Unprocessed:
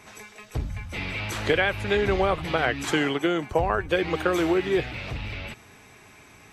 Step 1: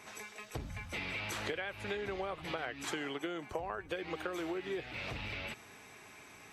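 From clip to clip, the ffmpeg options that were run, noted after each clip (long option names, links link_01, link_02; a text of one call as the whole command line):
ffmpeg -i in.wav -af "lowshelf=frequency=150:gain=-10.5,acompressor=threshold=-33dB:ratio=6,volume=-3dB" out.wav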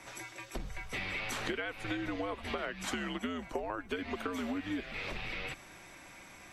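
ffmpeg -i in.wav -af "afreqshift=-90,volume=2dB" out.wav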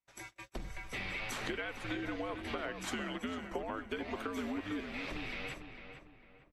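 ffmpeg -i in.wav -filter_complex "[0:a]aeval=exprs='val(0)+0.000891*(sin(2*PI*50*n/s)+sin(2*PI*2*50*n/s)/2+sin(2*PI*3*50*n/s)/3+sin(2*PI*4*50*n/s)/4+sin(2*PI*5*50*n/s)/5)':channel_layout=same,agate=range=-43dB:threshold=-45dB:ratio=16:detection=peak,asplit=2[link_01][link_02];[link_02]adelay=451,lowpass=frequency=2200:poles=1,volume=-7.5dB,asplit=2[link_03][link_04];[link_04]adelay=451,lowpass=frequency=2200:poles=1,volume=0.38,asplit=2[link_05][link_06];[link_06]adelay=451,lowpass=frequency=2200:poles=1,volume=0.38,asplit=2[link_07][link_08];[link_08]adelay=451,lowpass=frequency=2200:poles=1,volume=0.38[link_09];[link_01][link_03][link_05][link_07][link_09]amix=inputs=5:normalize=0,volume=-2.5dB" out.wav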